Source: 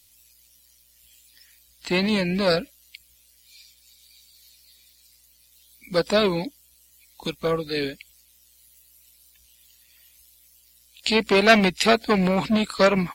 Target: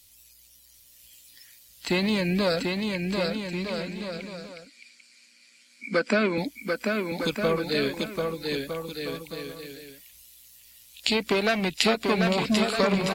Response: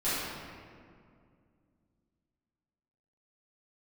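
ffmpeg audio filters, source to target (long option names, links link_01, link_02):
-filter_complex "[0:a]acompressor=threshold=-22dB:ratio=6,asettb=1/sr,asplit=3[link_01][link_02][link_03];[link_01]atrim=end=2.614[link_04];[link_02]atrim=start=2.61:end=6.38,asetpts=PTS-STARTPTS,afade=type=in:duration=0.004:curve=qsin,afade=type=out:start_time=3.766:duration=0.004:curve=qsin,highpass=frequency=200:width=0.5412,highpass=frequency=200:width=1.3066,equalizer=frequency=230:width_type=q:width=4:gain=10,equalizer=frequency=880:width_type=q:width=4:gain=-6,equalizer=frequency=1500:width_type=q:width=4:gain=9,equalizer=frequency=2300:width_type=q:width=4:gain=9,equalizer=frequency=3700:width_type=q:width=4:gain=-10,equalizer=frequency=6100:width_type=q:width=4:gain=-5,lowpass=frequency=7700:width=0.5412,lowpass=frequency=7700:width=1.3066[link_05];[link_03]atrim=start=6.376[link_06];[link_04][link_05]acrossfade=duration=0.004:curve1=hsin:curve2=qsin[link_07];[link_07][link_06]acrossfade=duration=0.004:curve1=qsin:curve2=hsin,aecho=1:1:740|1258|1621|1874|2052:0.631|0.398|0.251|0.158|0.1,volume=1.5dB"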